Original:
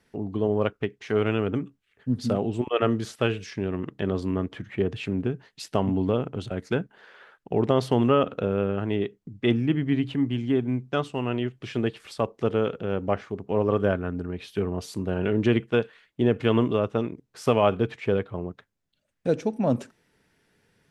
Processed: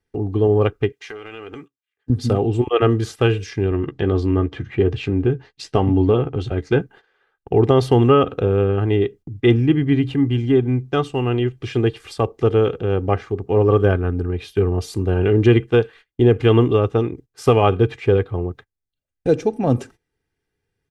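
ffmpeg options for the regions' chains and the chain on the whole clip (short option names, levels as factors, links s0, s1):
-filter_complex "[0:a]asettb=1/sr,asplit=3[s0][s1][s2];[s0]atrim=end=0.924[s3];[s1]atrim=start=0.92:end=2.1,asetpts=PTS-STARTPTS,afade=t=in:d=0.004:c=qsin,afade=t=out:st=1.176:d=0.004:c=qsin,highpass=f=1300:p=1,acompressor=threshold=0.0178:ratio=12:attack=3.2:release=140:knee=1:detection=peak,asplit=2[s4][s5];[s5]adelay=13,volume=0.237[s6];[s4][s6]amix=inputs=2:normalize=0,atrim=end_sample=52038[s7];[s2]atrim=start=2.096[s8];[s3][s7]acrossfade=d=0.004:c1=hsin:c2=qsin[s9];[s9][s8]acrossfade=d=0.004:c1=qsin:c2=hsin,asettb=1/sr,asplit=3[s10][s11][s12];[s10]atrim=end=3.704[s13];[s11]atrim=start=3.7:end=6.8,asetpts=PTS-STARTPTS,afade=t=in:d=0.004:c=qsin,afade=t=out:st=3.096:d=0.004:c=qsin,lowpass=6200,asplit=2[s14][s15];[s15]adelay=14,volume=0.355[s16];[s14][s16]amix=inputs=2:normalize=0,atrim=end_sample=136710[s17];[s12]atrim=start=6.796[s18];[s13][s17]acrossfade=d=0.004:c1=hsin:c2=qsin[s19];[s19][s18]acrossfade=d=0.004:c1=qsin:c2=hsin,agate=range=0.112:threshold=0.00501:ratio=16:detection=peak,lowshelf=f=170:g=10.5,aecho=1:1:2.5:0.55,volume=1.58"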